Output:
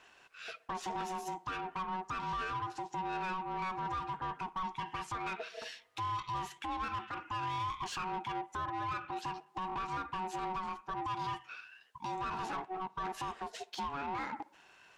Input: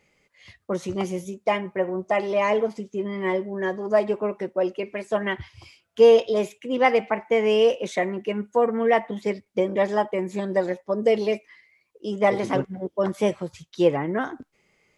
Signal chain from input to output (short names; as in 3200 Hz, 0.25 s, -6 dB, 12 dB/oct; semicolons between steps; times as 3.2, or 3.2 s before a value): compressor 4:1, threshold -33 dBFS, peak gain reduction 18.5 dB; ring modulator 560 Hz; limiter -30 dBFS, peak gain reduction 10.5 dB; overdrive pedal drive 14 dB, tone 5200 Hz, clips at -30 dBFS; tape echo 61 ms, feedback 72%, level -22 dB, low-pass 2300 Hz